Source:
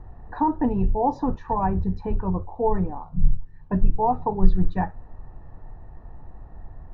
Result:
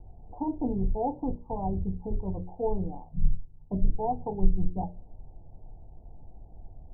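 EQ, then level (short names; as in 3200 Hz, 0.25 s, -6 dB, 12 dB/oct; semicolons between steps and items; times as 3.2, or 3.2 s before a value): steep low-pass 810 Hz 48 dB/oct; notches 60/120/180/240/300/360/420/480/540/600 Hz; -5.5 dB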